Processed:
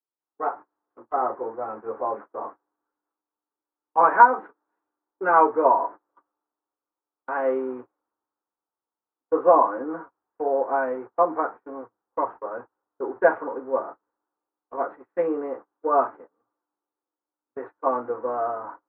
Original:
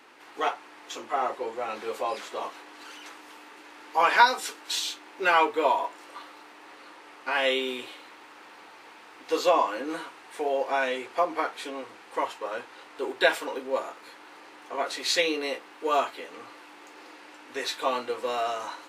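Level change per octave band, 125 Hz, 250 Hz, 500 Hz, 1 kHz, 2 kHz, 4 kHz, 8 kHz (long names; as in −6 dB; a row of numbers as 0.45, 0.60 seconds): can't be measured, +4.0 dB, +4.5 dB, +4.5 dB, −3.0 dB, below −40 dB, below −40 dB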